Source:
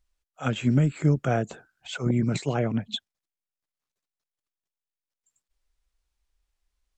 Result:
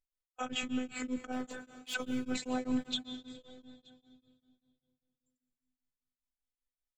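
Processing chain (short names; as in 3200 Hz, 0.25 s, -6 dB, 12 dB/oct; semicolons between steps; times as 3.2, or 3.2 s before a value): gate -53 dBFS, range -23 dB; in parallel at +3 dB: compressor, threshold -33 dBFS, peak gain reduction 15.5 dB; on the sum: limiter -22 dBFS, peak gain reduction 12.5 dB; 1.32–1.94 hard clip -32 dBFS, distortion -18 dB; robotiser 254 Hz; echo 0.925 s -23.5 dB; on a send at -9.5 dB: reverb RT60 2.7 s, pre-delay 0.11 s; on the sum: beating tremolo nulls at 5.1 Hz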